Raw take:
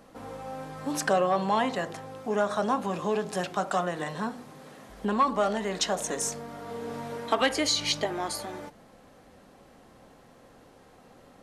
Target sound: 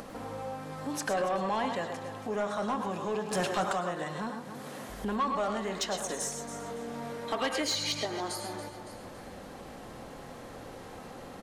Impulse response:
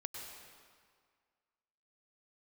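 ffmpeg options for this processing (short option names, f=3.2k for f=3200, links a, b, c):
-filter_complex "[0:a]aecho=1:1:280|560|840:0.158|0.0475|0.0143,acompressor=mode=upward:threshold=-29dB:ratio=2.5,asettb=1/sr,asplit=3[a][b][c];[a]atrim=end=4.544[d];[b]atrim=start=4.54:end=5.05,asetpts=PTS-STARTPTS,afade=t=in:d=0.004:c=qsin,afade=t=out:st=0.506:d=0.004:c=qsin,highshelf=f=8.2k:g=7[e];[c]atrim=start=5.046[f];[d][e]acrossfade=d=0.004:c1=hsin:c2=qsin[g];[g][f]acrossfade=d=0.004:c1=qsin:c2=hsin[h];[1:a]atrim=start_sample=2205,afade=t=out:st=0.18:d=0.01,atrim=end_sample=8379[i];[h][i]afir=irnorm=-1:irlink=0,asettb=1/sr,asplit=3[j][k][l];[j]atrim=end=3.314[m];[k]atrim=start=3.31:end=3.73,asetpts=PTS-STARTPTS,afade=t=in:d=0.004:c=qsin,afade=t=out:st=0.416:d=0.004:c=qsin,acontrast=73[n];[l]atrim=start=3.726[o];[m][n]acrossfade=d=0.004:c1=hsin:c2=qsin[p];[p][o]acrossfade=d=0.004:c1=qsin:c2=hsin,asoftclip=type=tanh:threshold=-22.5dB"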